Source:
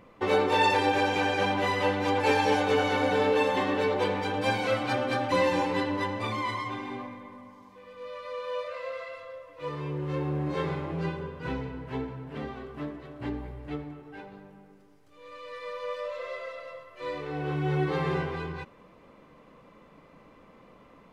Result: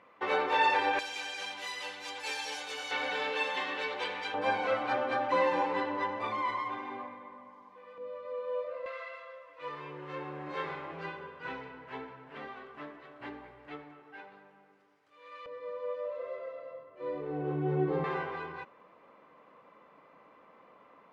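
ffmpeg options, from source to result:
-af "asetnsamples=n=441:p=0,asendcmd='0.99 bandpass f 7000;2.91 bandpass f 2800;4.34 bandpass f 1000;7.98 bandpass f 380;8.86 bandpass f 1600;15.46 bandpass f 360;18.04 bandpass f 1100',bandpass=f=1500:t=q:w=0.73:csg=0"

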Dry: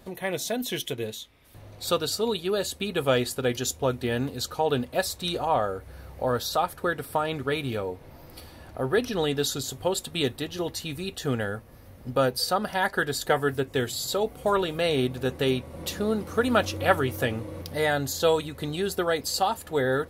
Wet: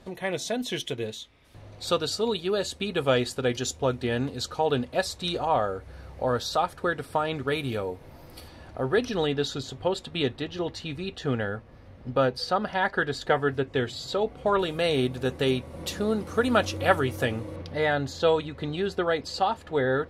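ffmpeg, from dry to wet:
-af "asetnsamples=n=441:p=0,asendcmd='7.48 lowpass f 12000;8.48 lowpass f 6900;9.27 lowpass f 4000;14.59 lowpass f 10000;17.56 lowpass f 3800',lowpass=7200"

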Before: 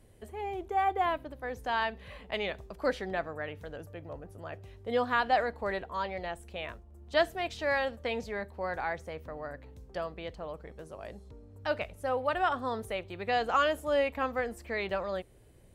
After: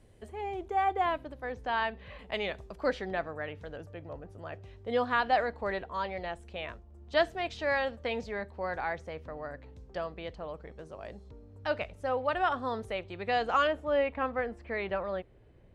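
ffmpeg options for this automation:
-af "asetnsamples=n=441:p=0,asendcmd='1.52 lowpass f 3900;2.19 lowpass f 9900;2.78 lowpass f 6100;13.67 lowpass f 2700',lowpass=8200"

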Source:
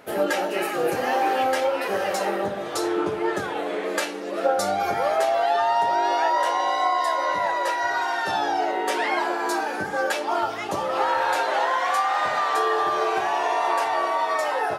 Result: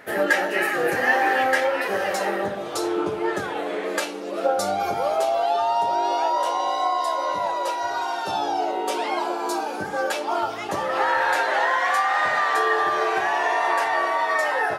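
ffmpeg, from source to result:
-af "asetnsamples=n=441:p=0,asendcmd='1.81 equalizer g 5;2.55 equalizer g -5;3.23 equalizer g 1;4 equalizer g -6;4.89 equalizer g -13.5;9.82 equalizer g -4;10.69 equalizer g 8',equalizer=f=1800:t=o:w=0.4:g=13"

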